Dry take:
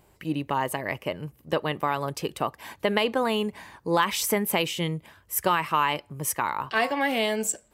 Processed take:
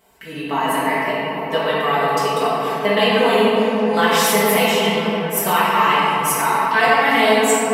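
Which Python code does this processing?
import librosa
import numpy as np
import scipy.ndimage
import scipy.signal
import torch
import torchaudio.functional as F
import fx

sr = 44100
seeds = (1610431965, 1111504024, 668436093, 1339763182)

y = scipy.signal.sosfilt(scipy.signal.butter(2, 41.0, 'highpass', fs=sr, output='sos'), x)
y = fx.low_shelf(y, sr, hz=300.0, db=-11.0)
y = y + 0.88 * np.pad(y, (int(4.5 * sr / 1000.0), 0))[:len(y)]
y = fx.echo_stepped(y, sr, ms=202, hz=180.0, octaves=0.7, feedback_pct=70, wet_db=-2.5)
y = fx.room_shoebox(y, sr, seeds[0], volume_m3=160.0, walls='hard', distance_m=1.2)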